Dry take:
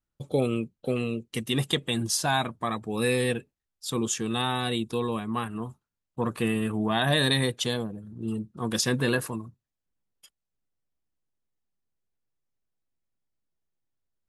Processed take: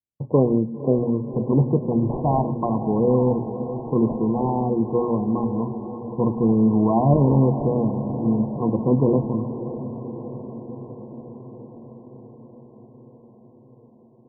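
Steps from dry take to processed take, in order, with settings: gate -48 dBFS, range -18 dB; HPF 120 Hz; low shelf 220 Hz +7 dB; notches 60/120/180/240 Hz; in parallel at -4 dB: decimation with a swept rate 18×, swing 160% 0.99 Hz; on the sum: brick-wall FIR low-pass 1100 Hz; diffused feedback echo 0.543 s, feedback 71%, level -11.5 dB; on a send at -13 dB: reverb RT60 0.45 s, pre-delay 0.101 s; on the sum: gain +2.5 dB

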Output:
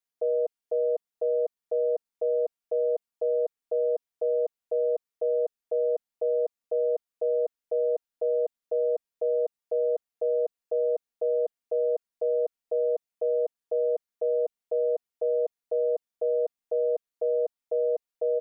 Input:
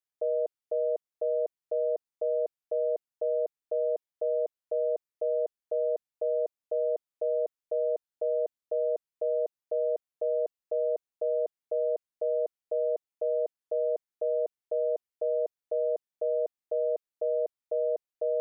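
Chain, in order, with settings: comb 4.3 ms, depth 75%

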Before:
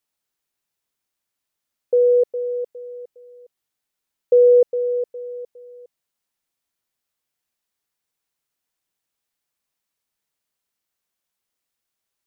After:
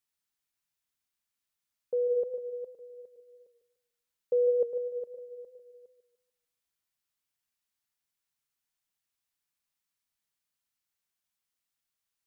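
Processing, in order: bell 470 Hz -8 dB 1.6 oct; warbling echo 0.148 s, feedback 34%, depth 59 cents, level -11.5 dB; gain -5 dB

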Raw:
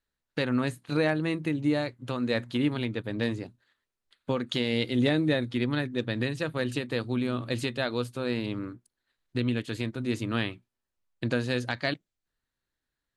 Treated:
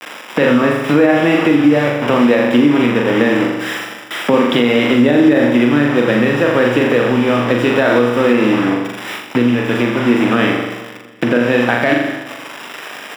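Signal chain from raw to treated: switching spikes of -29 dBFS; tilt -2 dB/oct; bit-crush 6-bit; polynomial smoothing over 25 samples; flutter echo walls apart 7.1 m, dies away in 0.66 s; compressor 2.5:1, threshold -35 dBFS, peak gain reduction 14.5 dB; Bessel high-pass 290 Hz, order 4; bell 370 Hz -2.5 dB 0.2 oct; feedback echo 0.233 s, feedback 45%, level -18 dB; maximiser +27 dB; gain -1 dB

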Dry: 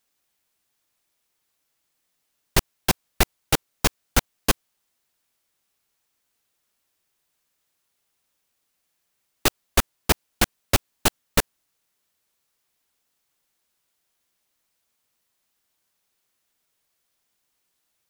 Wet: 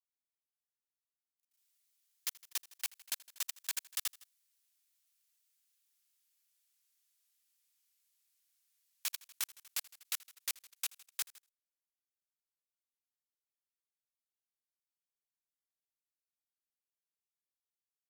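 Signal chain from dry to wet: Doppler pass-by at 5.8, 40 m/s, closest 28 m; feedback echo 80 ms, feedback 34%, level -15 dB; limiter -24.5 dBFS, peak gain reduction 11.5 dB; Bessel high-pass 2300 Hz, order 2; high shelf 4300 Hz +6 dB; level quantiser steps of 22 dB; gain +9.5 dB

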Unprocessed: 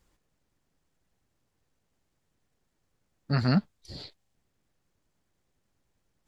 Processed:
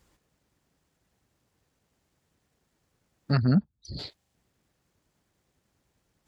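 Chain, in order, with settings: 3.37–3.99 formant sharpening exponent 2; HPF 45 Hz; in parallel at -2 dB: compressor, threshold -31 dBFS, peak gain reduction 11.5 dB

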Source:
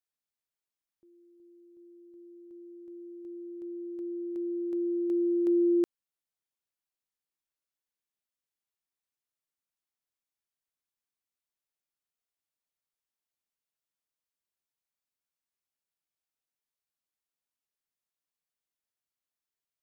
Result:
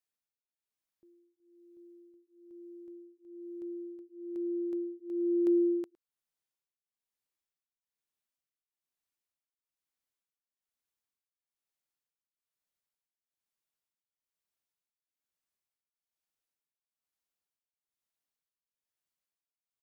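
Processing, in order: outdoor echo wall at 19 m, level -20 dB; beating tremolo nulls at 1.1 Hz

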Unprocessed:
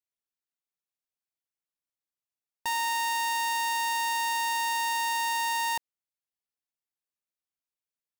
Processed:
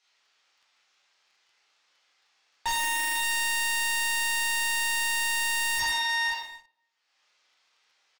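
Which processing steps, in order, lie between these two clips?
in parallel at -4 dB: bit-crush 6-bit; on the sum: Bessel high-pass 940 Hz, order 2; on a send: echo 0.495 s -9 dB; on the sum: upward compressor, threshold -39 dBFS; LPF 5600 Hz 24 dB/oct; doubler 33 ms -3 dB; shoebox room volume 320 m³, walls mixed, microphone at 4 m; sample leveller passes 2; wavefolder -15.5 dBFS; gain -7.5 dB

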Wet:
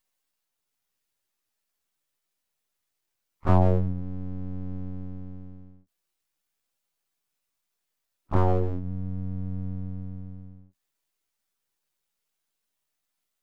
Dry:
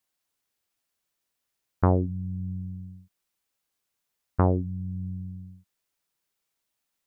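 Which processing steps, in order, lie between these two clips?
spectral gate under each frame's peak -20 dB strong; plain phase-vocoder stretch 1.9×; half-wave rectifier; gain +6 dB

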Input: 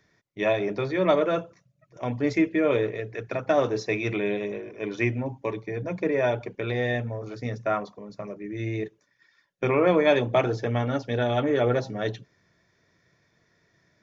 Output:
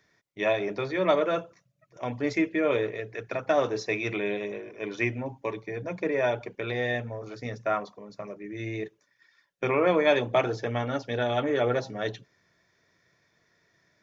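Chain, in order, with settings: low shelf 360 Hz -6.5 dB

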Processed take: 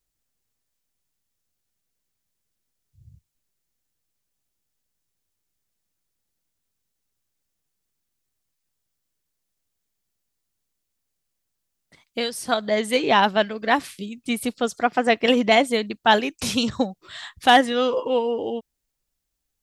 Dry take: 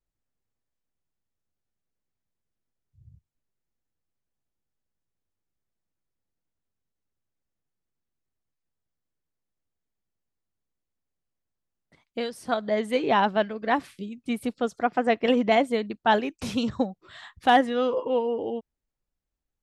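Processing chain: high shelf 2600 Hz +12 dB; gain +2.5 dB

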